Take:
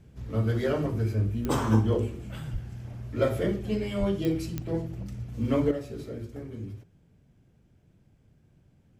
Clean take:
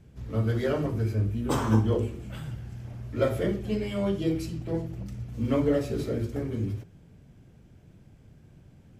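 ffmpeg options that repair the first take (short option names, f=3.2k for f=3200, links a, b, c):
-filter_complex "[0:a]adeclick=t=4,asplit=3[a][b][c];[a]afade=t=out:st=2.52:d=0.02[d];[b]highpass=f=140:w=0.5412,highpass=f=140:w=1.3066,afade=t=in:st=2.52:d=0.02,afade=t=out:st=2.64:d=0.02[e];[c]afade=t=in:st=2.64:d=0.02[f];[d][e][f]amix=inputs=3:normalize=0,asplit=3[g][h][i];[g]afade=t=out:st=3.99:d=0.02[j];[h]highpass=f=140:w=0.5412,highpass=f=140:w=1.3066,afade=t=in:st=3.99:d=0.02,afade=t=out:st=4.11:d=0.02[k];[i]afade=t=in:st=4.11:d=0.02[l];[j][k][l]amix=inputs=3:normalize=0,asetnsamples=n=441:p=0,asendcmd='5.71 volume volume 8dB',volume=0dB"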